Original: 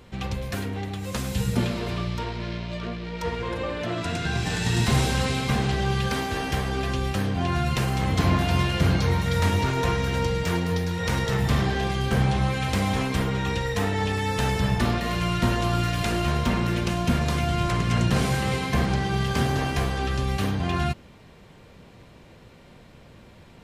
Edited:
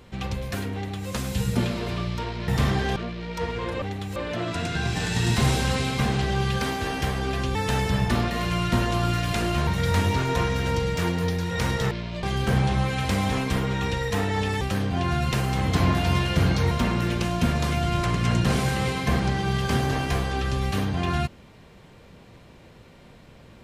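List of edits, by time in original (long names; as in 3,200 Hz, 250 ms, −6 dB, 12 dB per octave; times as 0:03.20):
0:00.74–0:01.08: duplicate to 0:03.66
0:02.48–0:02.80: swap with 0:11.39–0:11.87
0:07.05–0:09.15: swap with 0:14.25–0:16.37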